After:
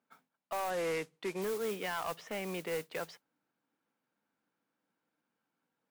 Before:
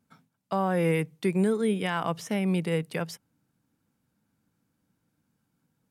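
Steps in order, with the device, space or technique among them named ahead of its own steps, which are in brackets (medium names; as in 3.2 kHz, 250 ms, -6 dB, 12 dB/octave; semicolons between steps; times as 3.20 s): carbon microphone (band-pass 430–3100 Hz; saturation -28 dBFS, distortion -11 dB; modulation noise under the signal 13 dB); 0.70–1.42 s: low-pass 9.4 kHz 12 dB/octave; trim -2 dB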